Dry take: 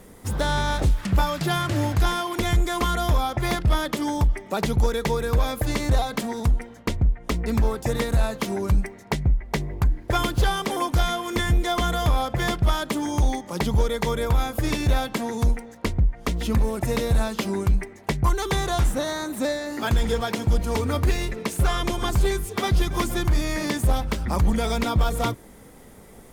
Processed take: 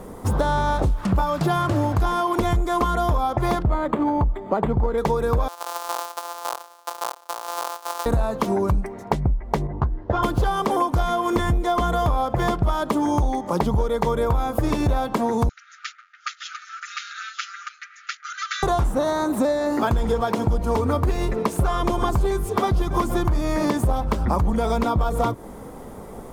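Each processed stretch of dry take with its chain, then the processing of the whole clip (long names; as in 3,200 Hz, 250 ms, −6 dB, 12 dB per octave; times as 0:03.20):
0:03.63–0:04.98: high-frequency loss of the air 62 metres + linearly interpolated sample-rate reduction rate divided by 8×
0:05.48–0:08.06: samples sorted by size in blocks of 256 samples + Bessel high-pass filter 1,200 Hz, order 4 + parametric band 2,100 Hz −11 dB 1.3 octaves
0:09.67–0:10.23: high-frequency loss of the air 180 metres + notch filter 2,300 Hz, Q 5.6 + string-ensemble chorus
0:15.49–0:18.63: lower of the sound and its delayed copy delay 6.7 ms + upward compression, threshold −35 dBFS + linear-phase brick-wall band-pass 1,200–7,200 Hz
whole clip: drawn EQ curve 140 Hz 0 dB, 1,100 Hz +5 dB, 1,900 Hz −7 dB; downward compressor, threshold −26 dBFS; level +8 dB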